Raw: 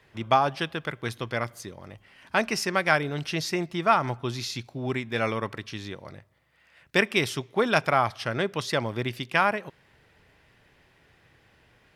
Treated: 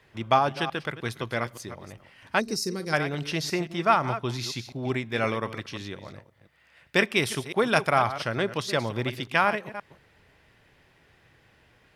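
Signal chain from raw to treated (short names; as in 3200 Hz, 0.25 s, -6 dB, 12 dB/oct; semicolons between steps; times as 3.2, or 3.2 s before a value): reverse delay 0.175 s, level -12 dB; 2.4–2.93 spectral gain 520–3700 Hz -18 dB; 7.18–7.98 bell 9900 Hz +8.5 dB 0.33 oct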